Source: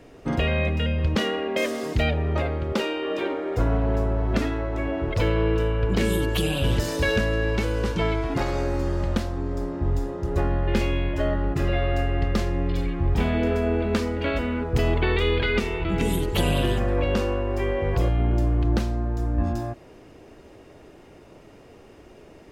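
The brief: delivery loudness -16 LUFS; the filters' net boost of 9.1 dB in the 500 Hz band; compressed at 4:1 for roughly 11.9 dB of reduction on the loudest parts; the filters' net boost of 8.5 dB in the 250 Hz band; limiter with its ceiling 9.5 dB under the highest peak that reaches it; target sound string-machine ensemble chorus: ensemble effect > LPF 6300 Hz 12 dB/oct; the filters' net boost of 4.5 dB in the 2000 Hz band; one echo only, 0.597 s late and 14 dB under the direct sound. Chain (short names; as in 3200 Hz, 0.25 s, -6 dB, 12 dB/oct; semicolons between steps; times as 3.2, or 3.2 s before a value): bell 250 Hz +8 dB; bell 500 Hz +8.5 dB; bell 2000 Hz +5 dB; compressor 4:1, threshold -26 dBFS; limiter -23 dBFS; echo 0.597 s -14 dB; ensemble effect; LPF 6300 Hz 12 dB/oct; gain +19 dB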